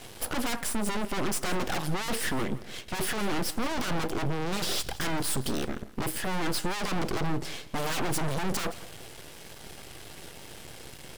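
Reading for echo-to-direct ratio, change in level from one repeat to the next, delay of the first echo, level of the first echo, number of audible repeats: −17.5 dB, −12.5 dB, 169 ms, −18.0 dB, 2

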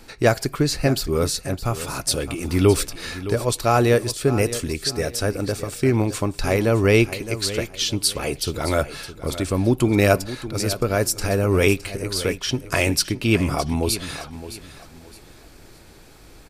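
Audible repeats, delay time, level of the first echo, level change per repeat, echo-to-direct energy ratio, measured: 3, 614 ms, −13.5 dB, −10.5 dB, −13.0 dB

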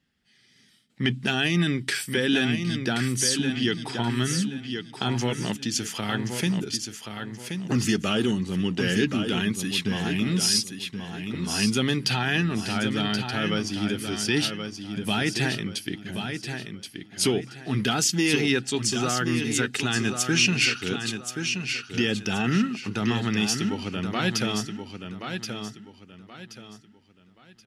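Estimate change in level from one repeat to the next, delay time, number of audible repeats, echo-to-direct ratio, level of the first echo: −10.5 dB, 1,077 ms, 3, −6.5 dB, −7.0 dB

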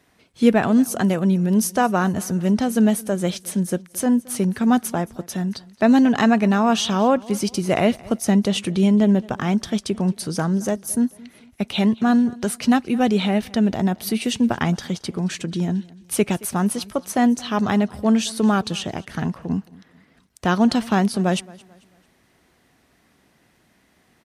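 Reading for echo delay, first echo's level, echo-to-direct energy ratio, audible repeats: 221 ms, −22.5 dB, −22.0 dB, 2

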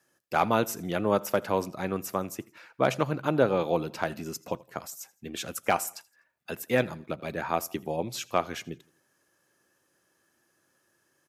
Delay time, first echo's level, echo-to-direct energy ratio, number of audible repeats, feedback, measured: 83 ms, −23.5 dB, −22.5 dB, 2, 41%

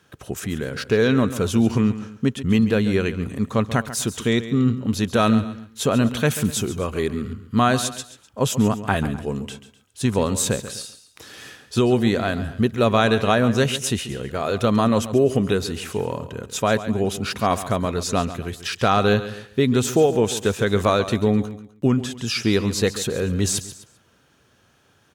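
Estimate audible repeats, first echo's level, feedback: 3, −13.5 dB, repeats not evenly spaced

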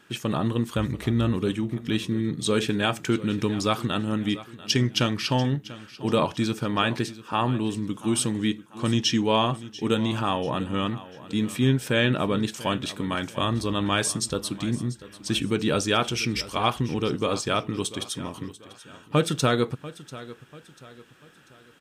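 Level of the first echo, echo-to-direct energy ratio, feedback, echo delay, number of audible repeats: −17.0 dB, −16.5 dB, 40%, 691 ms, 3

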